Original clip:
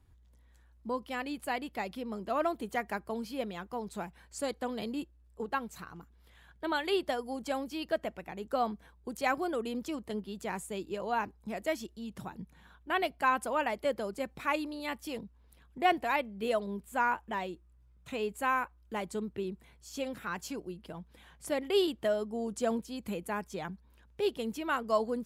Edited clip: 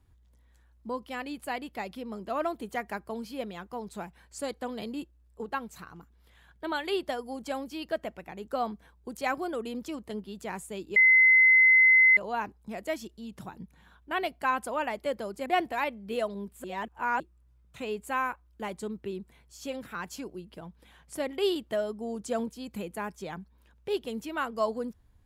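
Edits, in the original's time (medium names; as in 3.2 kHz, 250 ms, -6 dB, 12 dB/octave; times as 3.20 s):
10.96 s: add tone 2.05 kHz -15.5 dBFS 1.21 s
14.25–15.78 s: delete
16.96–17.52 s: reverse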